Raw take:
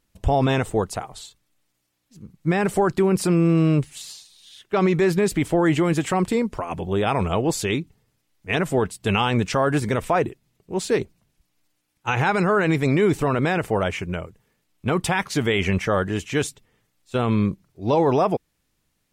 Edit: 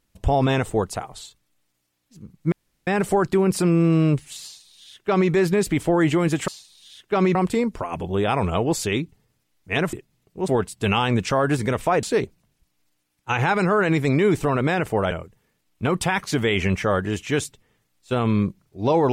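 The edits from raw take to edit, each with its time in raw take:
2.52 insert room tone 0.35 s
4.09–4.96 copy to 6.13
10.26–10.81 move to 8.71
13.89–14.14 cut

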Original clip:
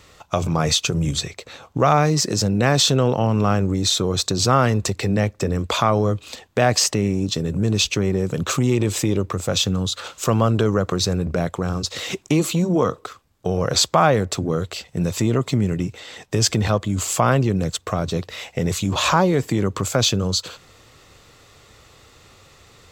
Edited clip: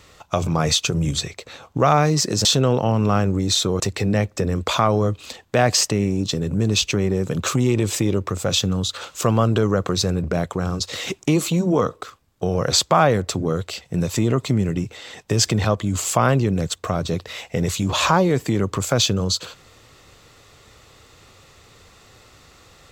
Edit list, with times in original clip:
2.45–2.8 cut
4.15–4.83 cut

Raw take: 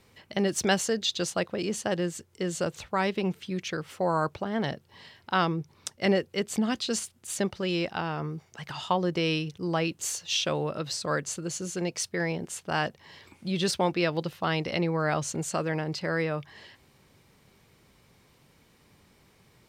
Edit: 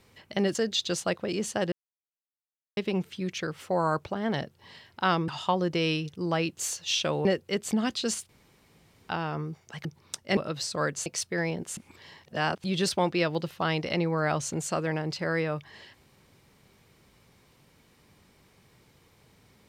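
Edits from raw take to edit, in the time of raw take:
0.55–0.85 cut
2.02–3.07 mute
5.58–6.1 swap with 8.7–10.67
7.14–7.94 room tone
11.36–11.88 cut
12.59–13.46 reverse

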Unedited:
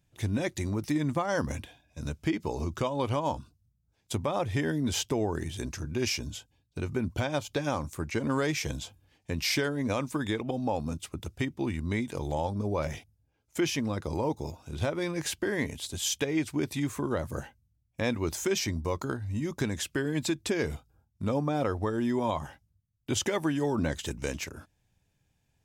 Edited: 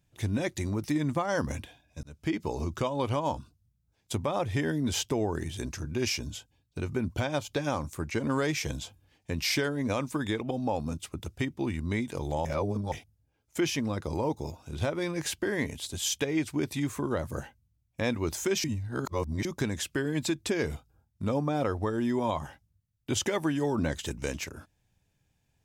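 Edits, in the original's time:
2.03–2.34 fade in linear
12.45–12.92 reverse
18.64–19.45 reverse

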